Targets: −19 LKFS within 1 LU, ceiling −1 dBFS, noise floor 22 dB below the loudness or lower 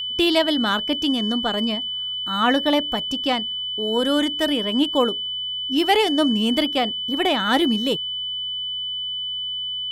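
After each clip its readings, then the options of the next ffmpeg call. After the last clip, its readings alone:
mains hum 60 Hz; hum harmonics up to 180 Hz; level of the hum −54 dBFS; interfering tone 3,000 Hz; level of the tone −25 dBFS; integrated loudness −21.0 LKFS; sample peak −4.5 dBFS; target loudness −19.0 LKFS
→ -af "bandreject=frequency=60:width_type=h:width=4,bandreject=frequency=120:width_type=h:width=4,bandreject=frequency=180:width_type=h:width=4"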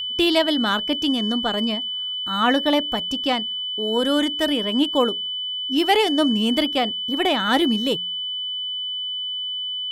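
mains hum none found; interfering tone 3,000 Hz; level of the tone −25 dBFS
→ -af "bandreject=frequency=3000:width=30"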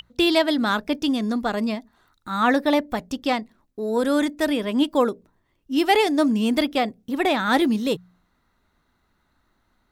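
interfering tone none found; integrated loudness −22.5 LKFS; sample peak −5.0 dBFS; target loudness −19.0 LKFS
→ -af "volume=3.5dB"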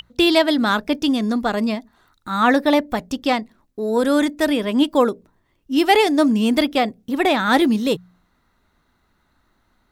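integrated loudness −19.0 LKFS; sample peak −1.5 dBFS; background noise floor −66 dBFS

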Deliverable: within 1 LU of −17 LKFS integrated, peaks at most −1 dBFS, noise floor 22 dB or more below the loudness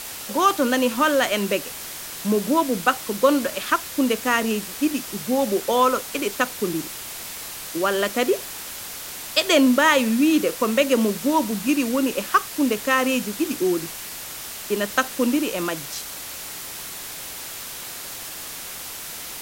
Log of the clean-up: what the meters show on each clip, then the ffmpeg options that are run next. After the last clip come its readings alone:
background noise floor −35 dBFS; target noise floor −45 dBFS; integrated loudness −23.0 LKFS; sample peak −2.5 dBFS; target loudness −17.0 LKFS
→ -af "afftdn=noise_reduction=10:noise_floor=-35"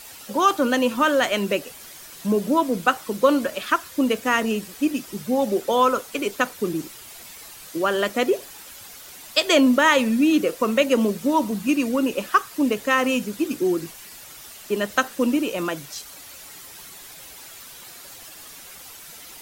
background noise floor −42 dBFS; target noise floor −44 dBFS
→ -af "afftdn=noise_reduction=6:noise_floor=-42"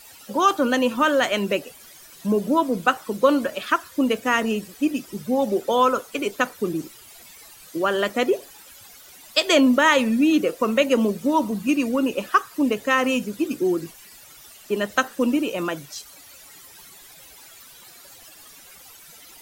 background noise floor −47 dBFS; integrated loudness −22.0 LKFS; sample peak −3.0 dBFS; target loudness −17.0 LKFS
→ -af "volume=5dB,alimiter=limit=-1dB:level=0:latency=1"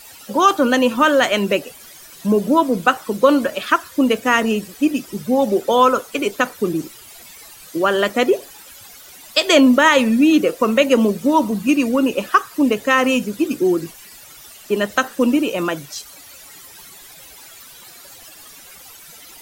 integrated loudness −17.0 LKFS; sample peak −1.0 dBFS; background noise floor −42 dBFS

